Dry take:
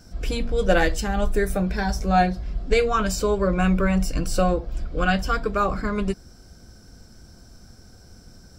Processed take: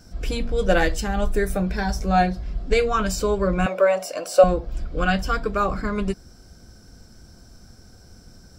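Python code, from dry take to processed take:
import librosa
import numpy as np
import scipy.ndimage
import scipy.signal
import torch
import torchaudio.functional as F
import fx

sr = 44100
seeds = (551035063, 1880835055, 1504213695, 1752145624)

y = fx.highpass_res(x, sr, hz=600.0, q=4.9, at=(3.66, 4.44))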